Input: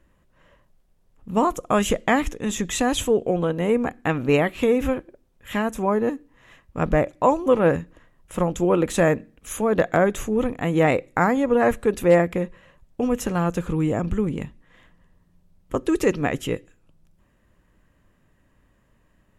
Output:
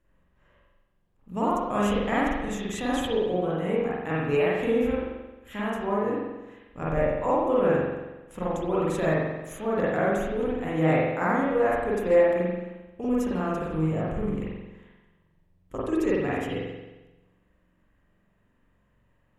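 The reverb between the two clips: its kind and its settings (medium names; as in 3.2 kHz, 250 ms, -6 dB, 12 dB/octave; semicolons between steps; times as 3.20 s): spring tank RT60 1.1 s, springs 44 ms, chirp 50 ms, DRR -7.5 dB; trim -12.5 dB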